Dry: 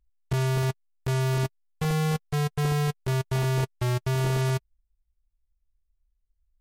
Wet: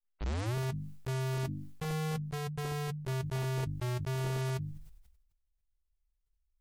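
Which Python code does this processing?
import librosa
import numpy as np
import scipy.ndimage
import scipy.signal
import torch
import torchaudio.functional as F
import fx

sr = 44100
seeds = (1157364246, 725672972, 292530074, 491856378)

y = fx.tape_start_head(x, sr, length_s=0.55)
y = fx.hum_notches(y, sr, base_hz=50, count=6)
y = fx.sustainer(y, sr, db_per_s=53.0)
y = F.gain(torch.from_numpy(y), -8.5).numpy()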